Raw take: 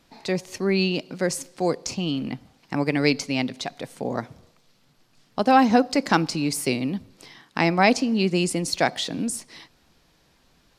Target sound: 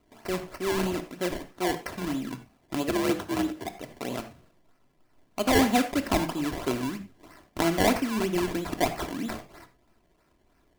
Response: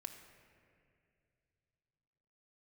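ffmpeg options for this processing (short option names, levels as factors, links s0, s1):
-filter_complex "[0:a]acrusher=samples=24:mix=1:aa=0.000001:lfo=1:lforange=24:lforate=3.1,asettb=1/sr,asplit=3[s0][s1][s2];[s0]atrim=end=2.894[s3];[s1]atrim=start=2.89:end=3.68,asetpts=PTS-STARTPTS,afade=t=in:d=0.004:c=qsin,afade=t=out:st=0.786:d=0.004:c=qsin,afreqshift=57[s4];[s2]atrim=start=3.676[s5];[s3][s4]acrossfade=d=0.004:c1=hsin:c2=qsin[s6];[s6][s5]acrossfade=d=0.004:c1=qsin:c2=hsin[s7];[1:a]atrim=start_sample=2205,afade=t=out:st=0.15:d=0.01,atrim=end_sample=7056[s8];[s7][s8]afir=irnorm=-1:irlink=0"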